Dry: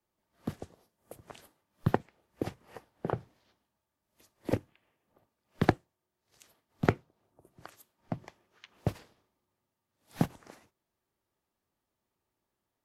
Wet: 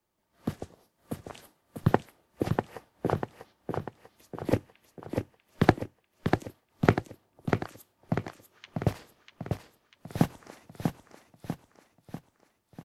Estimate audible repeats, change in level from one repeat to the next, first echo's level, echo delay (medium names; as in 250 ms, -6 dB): 6, -6.0 dB, -5.0 dB, 644 ms